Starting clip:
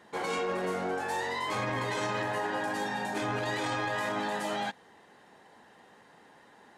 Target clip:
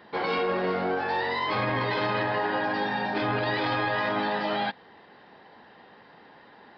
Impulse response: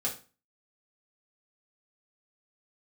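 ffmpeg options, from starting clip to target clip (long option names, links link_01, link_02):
-af "aresample=11025,aresample=44100,volume=5dB"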